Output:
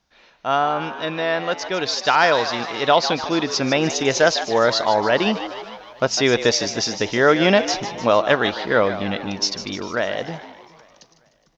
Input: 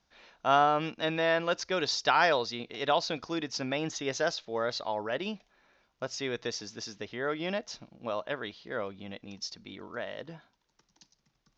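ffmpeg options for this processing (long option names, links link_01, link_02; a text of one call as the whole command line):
ffmpeg -i in.wav -filter_complex "[0:a]asplit=2[link_01][link_02];[link_02]asplit=6[link_03][link_04][link_05][link_06][link_07][link_08];[link_03]adelay=151,afreqshift=100,volume=-12dB[link_09];[link_04]adelay=302,afreqshift=200,volume=-16.7dB[link_10];[link_05]adelay=453,afreqshift=300,volume=-21.5dB[link_11];[link_06]adelay=604,afreqshift=400,volume=-26.2dB[link_12];[link_07]adelay=755,afreqshift=500,volume=-30.9dB[link_13];[link_08]adelay=906,afreqshift=600,volume=-35.7dB[link_14];[link_09][link_10][link_11][link_12][link_13][link_14]amix=inputs=6:normalize=0[link_15];[link_01][link_15]amix=inputs=2:normalize=0,dynaudnorm=framelen=300:gausssize=17:maxgain=14dB,asplit=2[link_16][link_17];[link_17]aecho=0:1:415|830|1245:0.0668|0.0274|0.0112[link_18];[link_16][link_18]amix=inputs=2:normalize=0,volume=4dB" out.wav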